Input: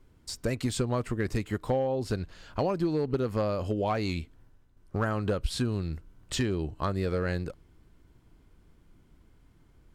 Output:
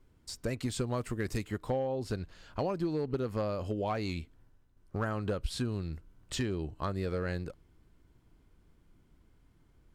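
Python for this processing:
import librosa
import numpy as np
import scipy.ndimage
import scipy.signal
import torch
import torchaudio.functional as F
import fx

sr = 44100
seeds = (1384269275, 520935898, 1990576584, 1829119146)

y = fx.high_shelf(x, sr, hz=fx.line((0.79, 7700.0), (1.45, 4200.0)), db=8.5, at=(0.79, 1.45), fade=0.02)
y = y * librosa.db_to_amplitude(-4.5)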